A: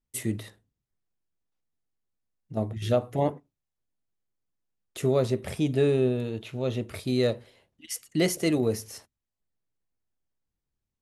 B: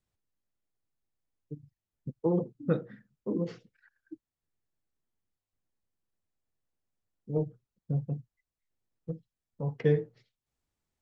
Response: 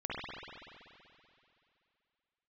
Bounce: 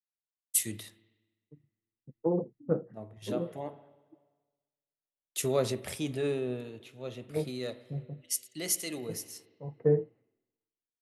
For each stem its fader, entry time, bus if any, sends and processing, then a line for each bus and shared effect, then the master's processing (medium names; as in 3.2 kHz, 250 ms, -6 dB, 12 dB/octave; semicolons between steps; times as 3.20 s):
-2.0 dB, 0.40 s, send -21.5 dB, peak limiter -18 dBFS, peak gain reduction 5.5 dB; auto duck -7 dB, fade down 1.70 s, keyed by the second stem
-1.0 dB, 0.00 s, no send, Chebyshev low-pass 730 Hz, order 2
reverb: on, RT60 2.7 s, pre-delay 47 ms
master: tilt EQ +2 dB/octave; three bands expanded up and down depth 70%